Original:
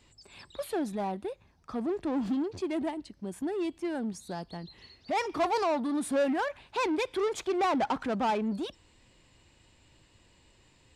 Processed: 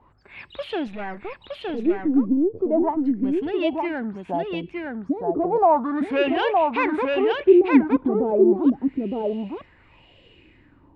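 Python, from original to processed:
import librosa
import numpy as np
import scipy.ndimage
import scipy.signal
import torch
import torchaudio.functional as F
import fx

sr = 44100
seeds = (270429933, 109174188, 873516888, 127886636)

p1 = fx.halfwave_gain(x, sr, db=-12.0, at=(0.87, 2.61))
p2 = fx.filter_lfo_lowpass(p1, sr, shape='sine', hz=0.35, low_hz=280.0, high_hz=3000.0, q=4.7)
p3 = p2 + fx.echo_single(p2, sr, ms=915, db=-3.0, dry=0)
y = F.gain(torch.from_numpy(p3), 4.0).numpy()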